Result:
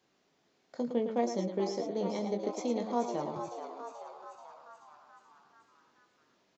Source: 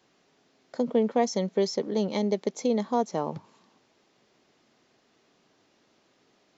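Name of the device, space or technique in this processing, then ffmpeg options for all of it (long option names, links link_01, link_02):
slapback doubling: -filter_complex "[0:a]asplit=3[link_01][link_02][link_03];[link_02]adelay=21,volume=-7dB[link_04];[link_03]adelay=110,volume=-7.5dB[link_05];[link_01][link_04][link_05]amix=inputs=3:normalize=0,asettb=1/sr,asplit=3[link_06][link_07][link_08];[link_06]atrim=end=1.214[link_09];[link_07]atrim=start=1.21:end=2.54,asetpts=PTS-STARTPTS,afade=type=in:duration=0.004:curve=qsin,afade=type=out:start_time=1.326:duration=0.004:curve=qsin,equalizer=frequency=4300:width=0.4:gain=-4[link_10];[link_08]atrim=start=2.536[link_11];[link_09][link_10]acrossfade=duration=0.004:curve1=hsin:curve2=qsin[link_12];[link_12][link_11]acrossfade=duration=0.004:curve1=qsin:curve2=hsin,asplit=8[link_13][link_14][link_15][link_16][link_17][link_18][link_19][link_20];[link_14]adelay=433,afreqshift=110,volume=-8.5dB[link_21];[link_15]adelay=866,afreqshift=220,volume=-13.4dB[link_22];[link_16]adelay=1299,afreqshift=330,volume=-18.3dB[link_23];[link_17]adelay=1732,afreqshift=440,volume=-23.1dB[link_24];[link_18]adelay=2165,afreqshift=550,volume=-28dB[link_25];[link_19]adelay=2598,afreqshift=660,volume=-32.9dB[link_26];[link_20]adelay=3031,afreqshift=770,volume=-37.8dB[link_27];[link_13][link_21][link_22][link_23][link_24][link_25][link_26][link_27]amix=inputs=8:normalize=0,volume=-8dB"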